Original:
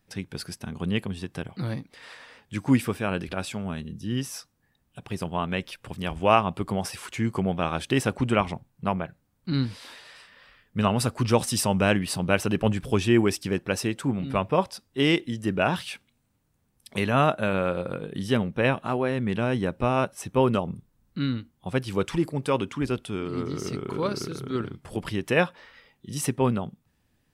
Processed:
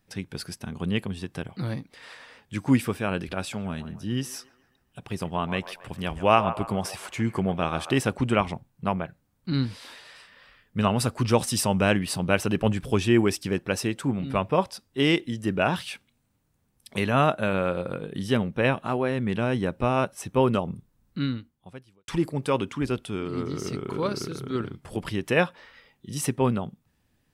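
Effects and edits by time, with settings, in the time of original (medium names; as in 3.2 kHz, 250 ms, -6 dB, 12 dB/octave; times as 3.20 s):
3.39–7.99 s: feedback echo behind a band-pass 138 ms, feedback 42%, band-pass 990 Hz, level -10.5 dB
21.24–22.08 s: fade out quadratic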